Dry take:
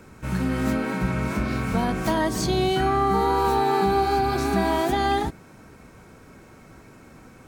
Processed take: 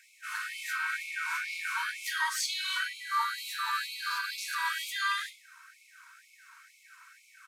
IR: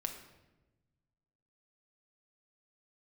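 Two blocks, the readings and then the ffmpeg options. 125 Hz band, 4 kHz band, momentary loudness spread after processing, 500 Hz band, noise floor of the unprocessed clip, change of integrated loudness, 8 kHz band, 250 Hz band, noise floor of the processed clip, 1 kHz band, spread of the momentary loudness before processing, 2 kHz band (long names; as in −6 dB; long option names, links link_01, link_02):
below −40 dB, −0.5 dB, 4 LU, below −40 dB, −49 dBFS, −9.0 dB, −0.5 dB, below −40 dB, −61 dBFS, −12.0 dB, 5 LU, +1.0 dB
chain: -filter_complex "[0:a]equalizer=frequency=1500:width=7.3:gain=6,aresample=32000,aresample=44100[link_01];[1:a]atrim=start_sample=2205,afade=type=out:start_time=0.2:duration=0.01,atrim=end_sample=9261[link_02];[link_01][link_02]afir=irnorm=-1:irlink=0,afftfilt=real='re*gte(b*sr/1024,900*pow(2100/900,0.5+0.5*sin(2*PI*2.1*pts/sr)))':imag='im*gte(b*sr/1024,900*pow(2100/900,0.5+0.5*sin(2*PI*2.1*pts/sr)))':win_size=1024:overlap=0.75"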